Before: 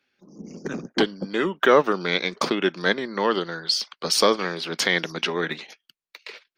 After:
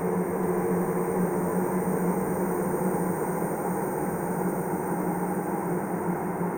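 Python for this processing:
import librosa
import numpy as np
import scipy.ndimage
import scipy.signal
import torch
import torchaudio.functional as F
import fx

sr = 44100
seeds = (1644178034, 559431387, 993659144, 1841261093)

y = scipy.signal.sosfilt(scipy.signal.cheby2(4, 50, [750.0, 4300.0], 'bandstop', fs=sr, output='sos'), x)
y = fx.low_shelf(y, sr, hz=490.0, db=-3.5)
y = fx.leveller(y, sr, passes=3)
y = fx.curve_eq(y, sr, hz=(180.0, 260.0, 400.0, 700.0, 2100.0, 3200.0, 7200.0, 15000.0), db=(0, -11, 6, 13, 14, -13, -9, 1))
y = fx.over_compress(y, sr, threshold_db=-26.0, ratio=-0.5)
y = fx.paulstretch(y, sr, seeds[0], factor=13.0, window_s=1.0, from_s=2.21)
y = y + 10.0 ** (-6.0 / 20.0) * np.pad(y, (int(435 * sr / 1000.0), 0))[:len(y)]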